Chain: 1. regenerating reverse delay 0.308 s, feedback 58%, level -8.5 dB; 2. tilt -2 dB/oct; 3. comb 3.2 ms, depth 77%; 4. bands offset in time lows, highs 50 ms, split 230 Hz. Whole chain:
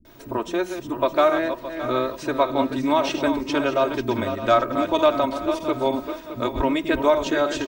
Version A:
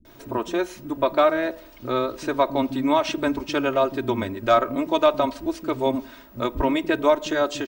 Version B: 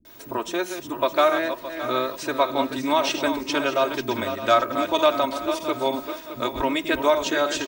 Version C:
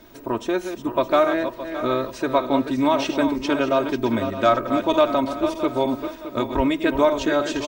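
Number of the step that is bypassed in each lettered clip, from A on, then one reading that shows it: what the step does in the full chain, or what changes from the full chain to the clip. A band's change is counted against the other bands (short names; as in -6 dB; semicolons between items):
1, momentary loudness spread change +1 LU; 2, 125 Hz band -7.0 dB; 4, echo-to-direct 21.5 dB to none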